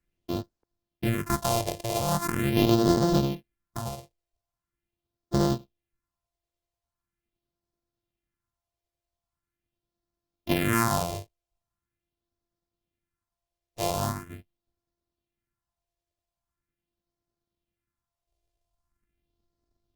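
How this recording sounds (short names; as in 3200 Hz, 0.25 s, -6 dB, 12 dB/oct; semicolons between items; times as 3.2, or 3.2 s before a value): a buzz of ramps at a fixed pitch in blocks of 128 samples; phasing stages 4, 0.42 Hz, lowest notch 230–2400 Hz; Opus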